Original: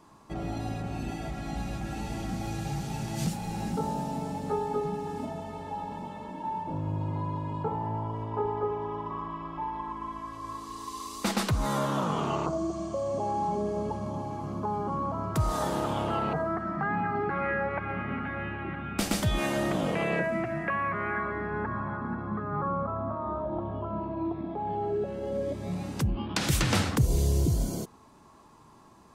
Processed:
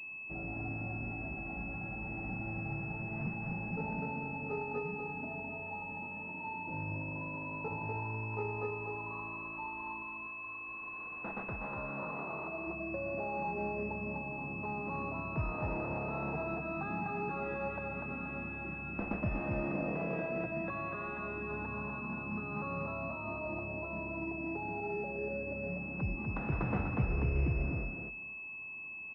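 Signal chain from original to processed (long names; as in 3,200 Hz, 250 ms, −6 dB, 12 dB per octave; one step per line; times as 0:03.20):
0:10.02–0:12.67: low-shelf EQ 450 Hz −10 dB
repeating echo 246 ms, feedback 15%, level −4 dB
switching amplifier with a slow clock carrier 2,600 Hz
level −8.5 dB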